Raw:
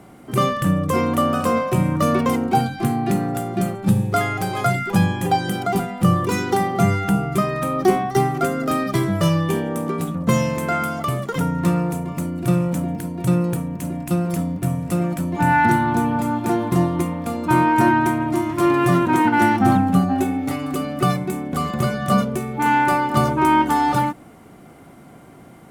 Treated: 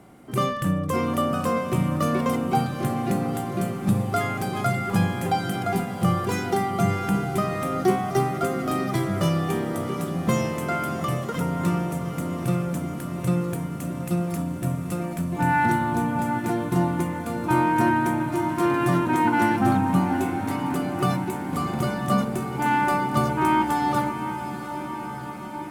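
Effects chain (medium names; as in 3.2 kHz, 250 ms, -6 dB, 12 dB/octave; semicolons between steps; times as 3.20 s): echo that smears into a reverb 762 ms, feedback 71%, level -10.5 dB; trim -5 dB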